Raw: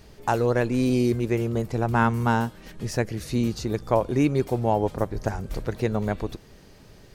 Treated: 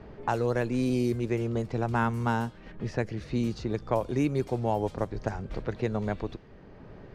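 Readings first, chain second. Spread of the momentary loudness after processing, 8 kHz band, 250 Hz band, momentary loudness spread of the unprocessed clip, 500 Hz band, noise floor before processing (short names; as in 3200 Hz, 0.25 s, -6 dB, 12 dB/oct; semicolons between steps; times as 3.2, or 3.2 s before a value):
9 LU, -9.5 dB, -4.5 dB, 10 LU, -5.0 dB, -50 dBFS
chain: low-pass opened by the level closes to 1400 Hz, open at -17 dBFS; three-band squash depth 40%; gain -5 dB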